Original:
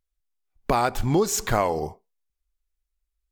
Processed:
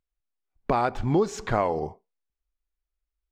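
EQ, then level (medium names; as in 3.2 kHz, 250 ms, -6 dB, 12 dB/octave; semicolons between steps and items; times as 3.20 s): tape spacing loss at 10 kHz 21 dB; bass shelf 78 Hz -6 dB; 0.0 dB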